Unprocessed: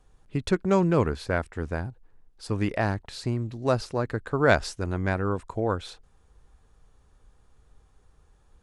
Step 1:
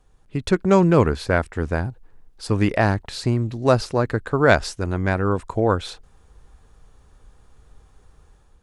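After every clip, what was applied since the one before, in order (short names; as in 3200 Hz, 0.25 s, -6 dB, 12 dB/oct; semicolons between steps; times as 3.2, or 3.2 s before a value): AGC gain up to 6.5 dB; gain +1 dB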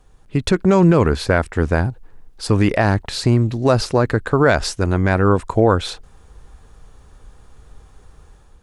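limiter -10.5 dBFS, peak gain reduction 9 dB; gain +6.5 dB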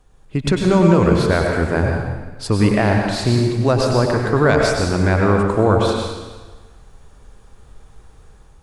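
plate-style reverb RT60 1.3 s, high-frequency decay 0.95×, pre-delay 85 ms, DRR 0.5 dB; gain -2 dB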